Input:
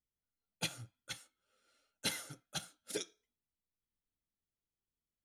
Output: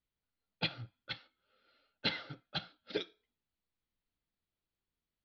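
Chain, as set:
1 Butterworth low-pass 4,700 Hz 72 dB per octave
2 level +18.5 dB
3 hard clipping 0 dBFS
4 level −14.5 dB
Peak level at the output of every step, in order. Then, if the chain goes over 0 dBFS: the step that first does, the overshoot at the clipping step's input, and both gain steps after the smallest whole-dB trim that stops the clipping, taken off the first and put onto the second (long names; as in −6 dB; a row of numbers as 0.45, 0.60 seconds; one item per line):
−23.0, −4.5, −4.5, −19.0 dBFS
no step passes full scale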